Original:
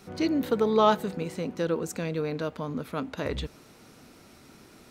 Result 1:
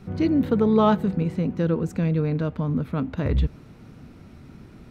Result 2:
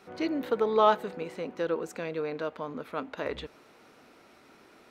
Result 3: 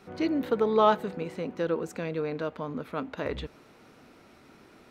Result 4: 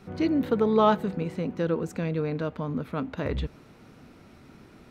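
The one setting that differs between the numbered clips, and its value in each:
tone controls, bass: +15, -14, -5, +5 dB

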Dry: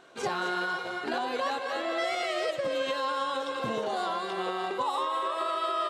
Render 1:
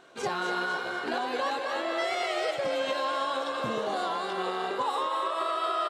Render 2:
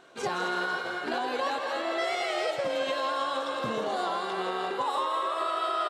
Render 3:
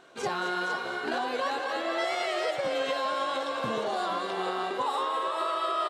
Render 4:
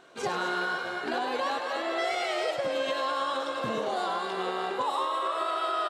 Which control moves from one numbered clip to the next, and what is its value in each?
frequency-shifting echo, time: 0.248, 0.163, 0.464, 0.102 s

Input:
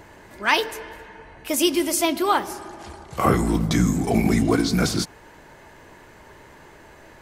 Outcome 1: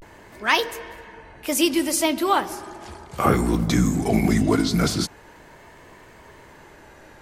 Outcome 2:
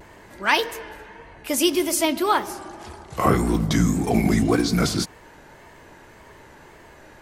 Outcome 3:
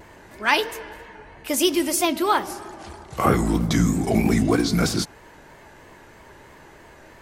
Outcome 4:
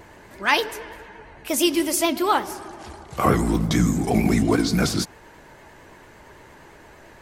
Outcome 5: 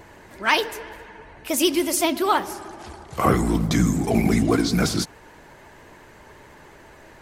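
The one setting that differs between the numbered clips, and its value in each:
vibrato, rate: 0.38, 1.8, 3.1, 8.8, 14 Hz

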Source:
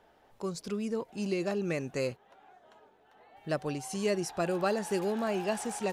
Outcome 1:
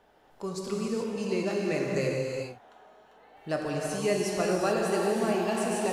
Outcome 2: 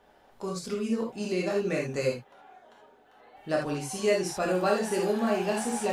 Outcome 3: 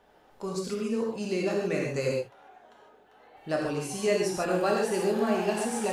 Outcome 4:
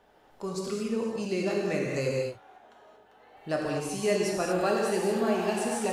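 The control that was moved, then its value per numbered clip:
non-linear reverb, gate: 0.46, 0.1, 0.17, 0.26 s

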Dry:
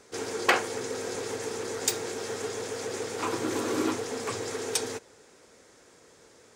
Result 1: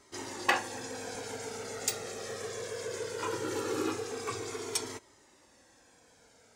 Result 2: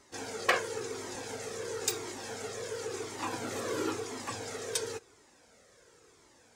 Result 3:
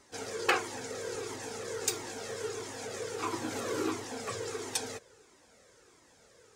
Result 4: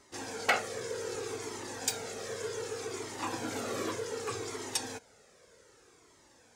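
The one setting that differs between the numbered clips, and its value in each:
cascading flanger, rate: 0.2, 0.96, 1.5, 0.65 Hz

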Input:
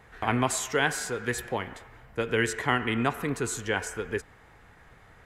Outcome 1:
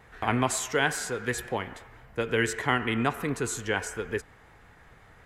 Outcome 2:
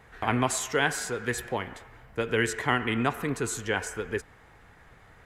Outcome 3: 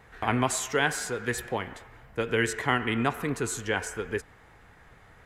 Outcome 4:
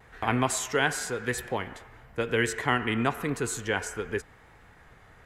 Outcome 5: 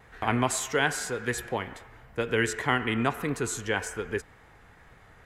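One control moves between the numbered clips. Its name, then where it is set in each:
vibrato, rate: 5.6, 15, 8.9, 0.94, 1.9 Hz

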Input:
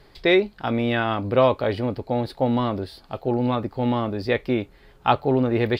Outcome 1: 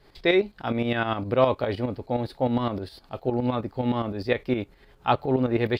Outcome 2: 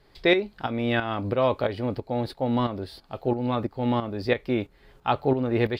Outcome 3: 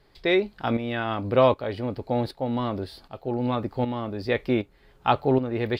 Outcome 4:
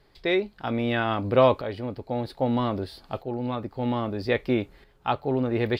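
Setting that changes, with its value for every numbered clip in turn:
tremolo, rate: 9.7, 3, 1.3, 0.62 Hz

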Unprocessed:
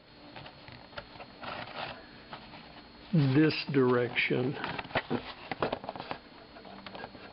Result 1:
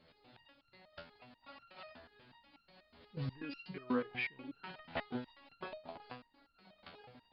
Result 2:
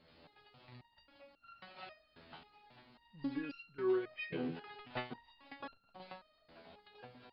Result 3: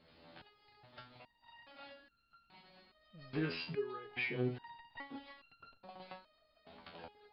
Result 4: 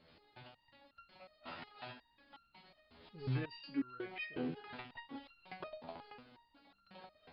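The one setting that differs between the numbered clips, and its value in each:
stepped resonator, rate: 8.2, 3.7, 2.4, 5.5 Hz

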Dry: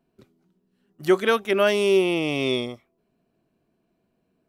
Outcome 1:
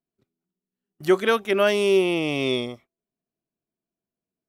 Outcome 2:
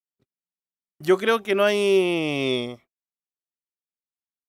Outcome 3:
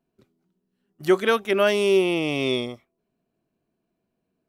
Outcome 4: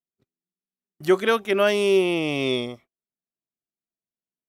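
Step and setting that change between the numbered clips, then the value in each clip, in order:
gate, range: -20, -45, -6, -32 dB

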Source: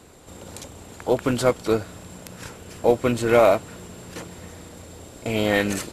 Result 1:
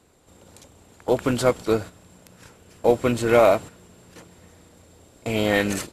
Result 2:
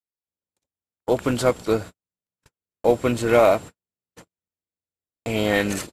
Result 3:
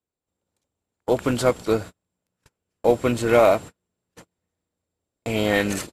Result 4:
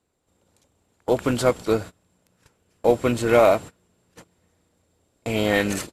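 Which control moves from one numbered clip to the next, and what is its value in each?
gate, range: -10, -59, -41, -25 dB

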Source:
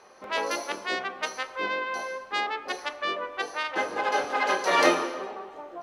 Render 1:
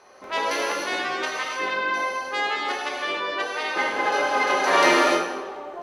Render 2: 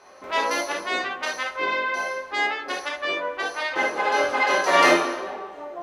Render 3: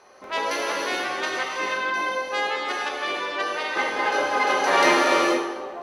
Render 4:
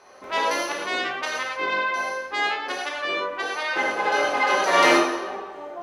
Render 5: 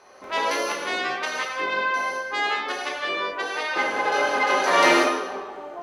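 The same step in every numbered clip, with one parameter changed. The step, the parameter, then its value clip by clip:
non-linear reverb, gate: 330, 90, 510, 150, 220 ms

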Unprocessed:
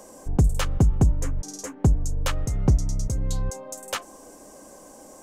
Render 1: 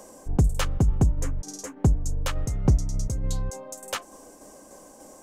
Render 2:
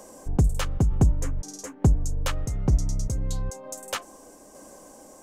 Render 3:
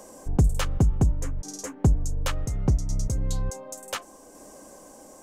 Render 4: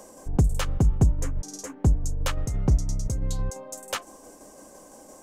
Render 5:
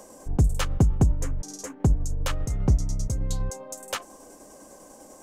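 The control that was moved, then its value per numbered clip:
tremolo, rate: 3.4, 1.1, 0.69, 5.9, 10 Hz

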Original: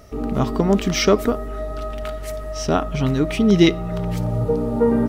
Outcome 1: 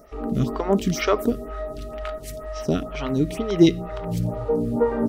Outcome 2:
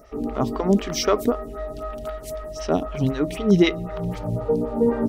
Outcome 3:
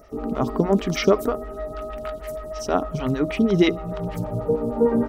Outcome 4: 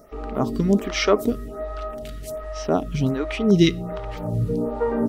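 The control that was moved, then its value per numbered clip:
photocell phaser, rate: 2.1, 3.9, 6.4, 1.3 Hz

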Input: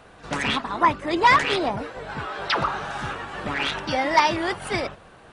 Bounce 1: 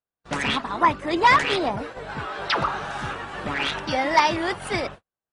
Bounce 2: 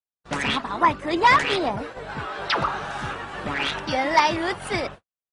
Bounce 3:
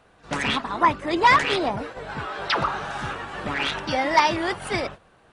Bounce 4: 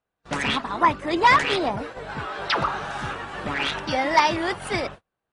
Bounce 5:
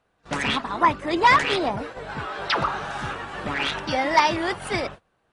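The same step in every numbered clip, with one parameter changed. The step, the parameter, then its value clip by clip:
gate, range: -47, -60, -8, -35, -21 dB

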